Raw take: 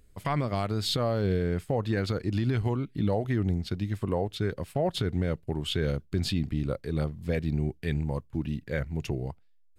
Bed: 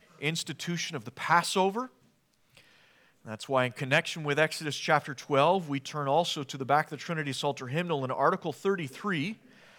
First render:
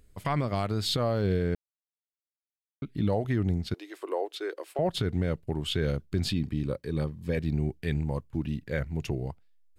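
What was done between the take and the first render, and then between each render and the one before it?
0:01.55–0:02.82: silence
0:03.74–0:04.79: elliptic high-pass filter 330 Hz
0:06.33–0:07.37: notch comb filter 690 Hz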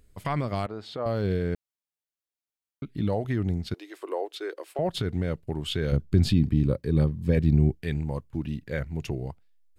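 0:00.66–0:01.06: resonant band-pass 690 Hz, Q 0.86
0:05.92–0:07.75: low-shelf EQ 390 Hz +9.5 dB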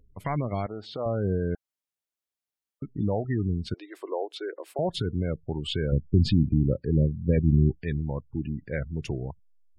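gate on every frequency bin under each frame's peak −25 dB strong
dynamic equaliser 1,200 Hz, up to −5 dB, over −54 dBFS, Q 6.3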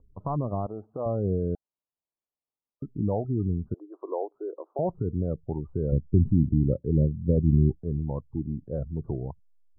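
adaptive Wiener filter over 9 samples
Butterworth low-pass 1,200 Hz 72 dB per octave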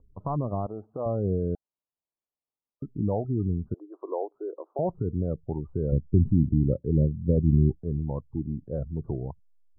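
no processing that can be heard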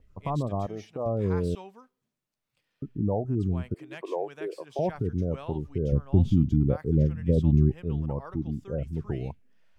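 mix in bed −19 dB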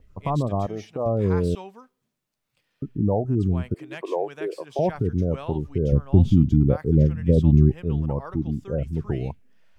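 level +5 dB

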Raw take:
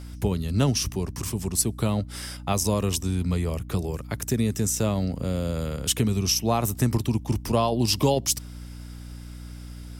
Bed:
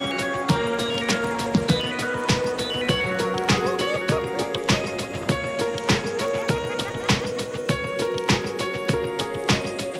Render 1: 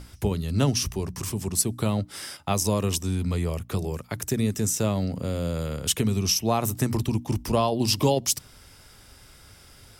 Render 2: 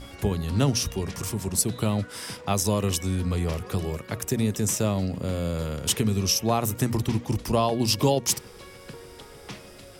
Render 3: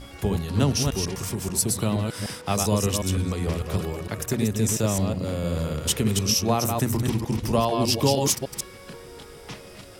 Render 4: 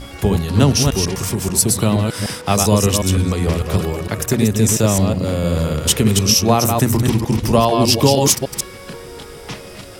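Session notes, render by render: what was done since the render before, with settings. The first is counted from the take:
mains-hum notches 60/120/180/240/300 Hz
mix in bed −19.5 dB
delay that plays each chunk backwards 151 ms, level −4 dB
level +8.5 dB; brickwall limiter −1 dBFS, peak gain reduction 2 dB

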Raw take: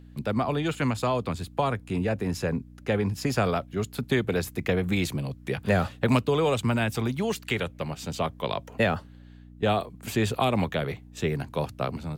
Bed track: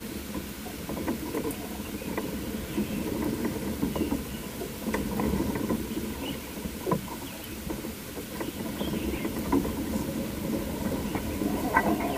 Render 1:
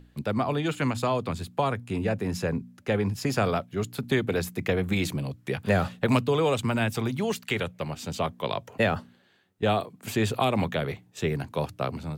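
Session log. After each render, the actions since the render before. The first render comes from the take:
hum removal 60 Hz, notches 5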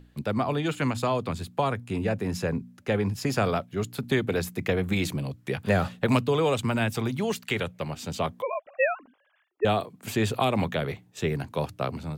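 0:08.42–0:09.65: three sine waves on the formant tracks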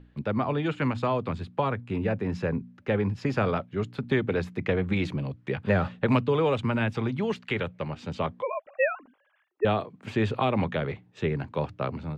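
low-pass filter 2,800 Hz 12 dB per octave
notch filter 700 Hz, Q 12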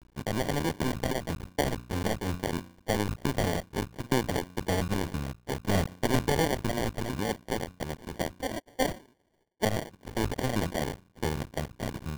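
sub-harmonics by changed cycles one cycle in 2, muted
decimation without filtering 34×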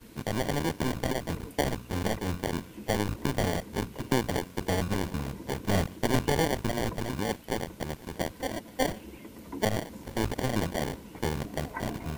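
mix in bed track −14.5 dB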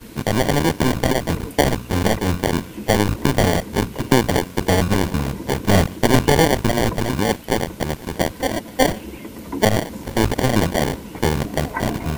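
level +11.5 dB
brickwall limiter −2 dBFS, peak gain reduction 1 dB

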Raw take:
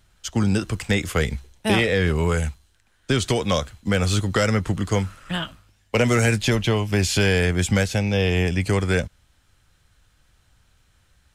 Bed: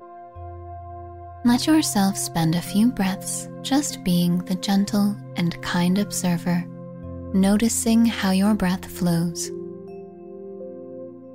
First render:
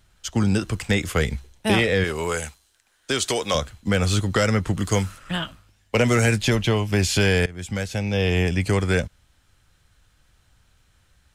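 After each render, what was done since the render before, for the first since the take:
0:02.04–0:03.55: bass and treble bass −13 dB, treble +5 dB
0:04.77–0:05.17: high-shelf EQ 6,100 Hz → 3,700 Hz +9 dB
0:07.46–0:08.32: fade in, from −20 dB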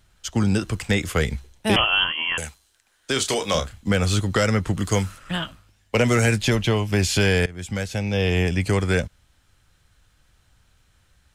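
0:01.76–0:02.38: voice inversion scrambler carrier 3,200 Hz
0:03.13–0:03.92: double-tracking delay 30 ms −7.5 dB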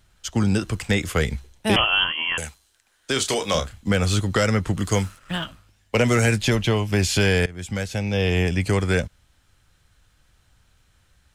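0:05.04–0:05.45: mu-law and A-law mismatch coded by A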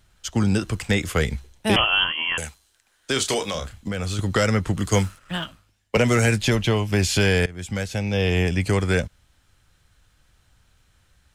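0:03.42–0:04.19: downward compressor, threshold −23 dBFS
0:04.86–0:05.97: multiband upward and downward expander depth 40%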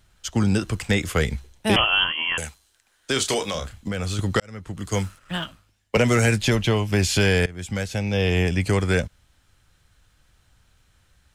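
0:04.40–0:05.36: fade in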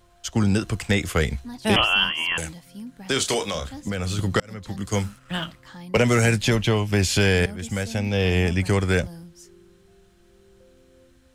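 mix in bed −19.5 dB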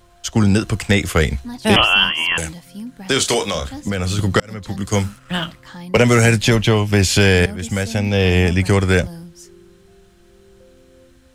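level +6 dB
brickwall limiter −2 dBFS, peak gain reduction 1.5 dB

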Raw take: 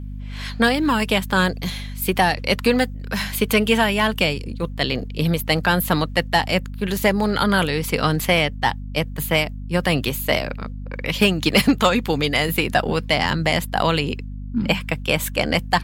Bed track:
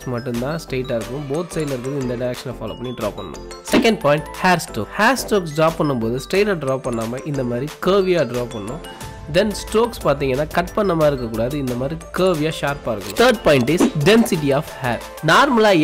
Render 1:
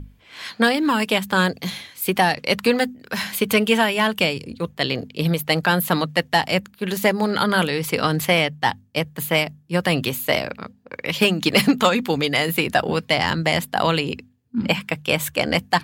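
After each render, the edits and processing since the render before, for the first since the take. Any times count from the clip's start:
mains-hum notches 50/100/150/200/250 Hz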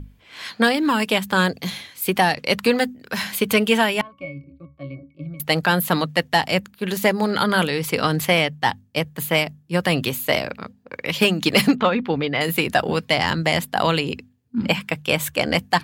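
0:04.01–0:05.40: resonances in every octave C#, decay 0.22 s
0:11.75–0:12.41: high-frequency loss of the air 300 metres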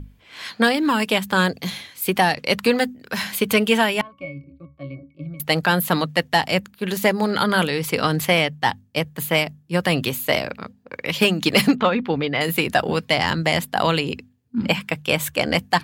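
no processing that can be heard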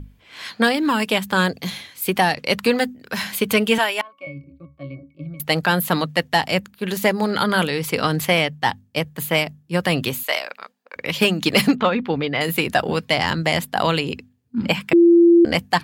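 0:03.78–0:04.27: high-pass filter 510 Hz
0:10.23–0:10.96: high-pass filter 750 Hz
0:14.93–0:15.45: beep over 341 Hz −8 dBFS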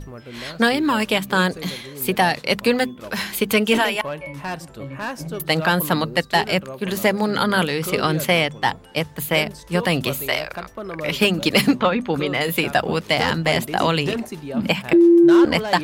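mix in bed track −14 dB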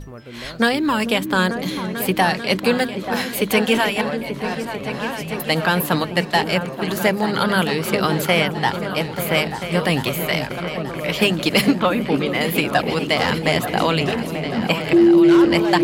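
echo whose low-pass opens from repeat to repeat 443 ms, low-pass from 400 Hz, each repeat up 2 octaves, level −6 dB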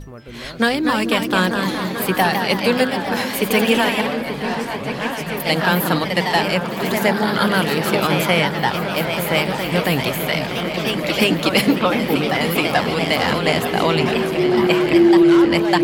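echo through a band-pass that steps 738 ms, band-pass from 1,000 Hz, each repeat 0.7 octaves, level −9 dB
delay with pitch and tempo change per echo 280 ms, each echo +1 semitone, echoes 3, each echo −6 dB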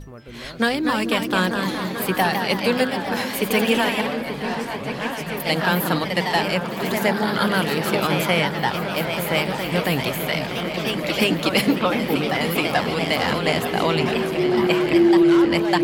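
level −3 dB

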